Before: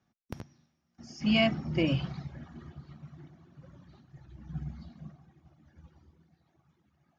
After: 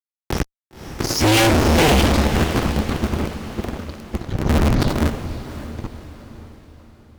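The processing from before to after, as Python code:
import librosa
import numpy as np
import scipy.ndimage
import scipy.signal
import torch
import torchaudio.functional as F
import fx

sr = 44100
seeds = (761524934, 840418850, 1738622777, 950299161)

y = fx.cycle_switch(x, sr, every=2, mode='inverted')
y = fx.fuzz(y, sr, gain_db=46.0, gate_db=-50.0)
y = fx.echo_diffused(y, sr, ms=550, feedback_pct=44, wet_db=-10.0)
y = fx.env_flatten(y, sr, amount_pct=50, at=(4.45, 5.05))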